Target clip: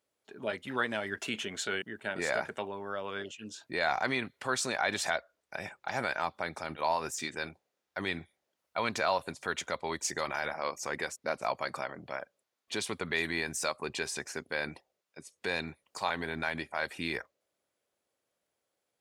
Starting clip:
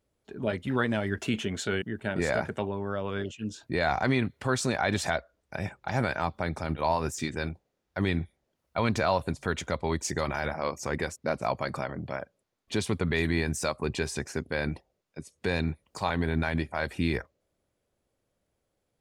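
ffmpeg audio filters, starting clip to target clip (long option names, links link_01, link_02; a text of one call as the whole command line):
ffmpeg -i in.wav -af "highpass=frequency=770:poles=1" out.wav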